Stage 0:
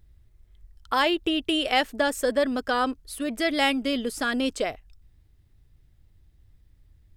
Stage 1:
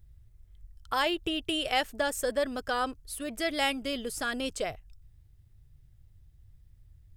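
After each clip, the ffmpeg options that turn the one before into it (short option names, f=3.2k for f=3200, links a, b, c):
-af "equalizer=f=125:t=o:w=1:g=6,equalizer=f=250:t=o:w=1:g=-10,equalizer=f=500:t=o:w=1:g=-3,equalizer=f=1k:t=o:w=1:g=-4,equalizer=f=2k:t=o:w=1:g=-4,equalizer=f=4k:t=o:w=1:g=-4"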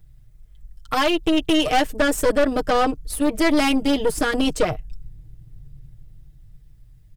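-filter_complex "[0:a]aecho=1:1:6.5:0.9,acrossover=split=590|2200[a][b][c];[a]dynaudnorm=f=270:g=11:m=10dB[d];[d][b][c]amix=inputs=3:normalize=0,aeval=exprs='(tanh(12.6*val(0)+0.65)-tanh(0.65))/12.6':c=same,volume=8.5dB"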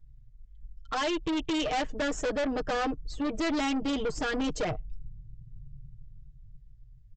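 -af "afftdn=nr=13:nf=-41,aresample=16000,asoftclip=type=tanh:threshold=-22dB,aresample=44100,volume=-3.5dB"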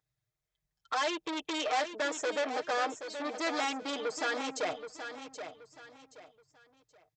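-filter_complex "[0:a]highpass=510,bandreject=f=2.9k:w=12,asplit=2[a][b];[b]aecho=0:1:776|1552|2328:0.335|0.1|0.0301[c];[a][c]amix=inputs=2:normalize=0"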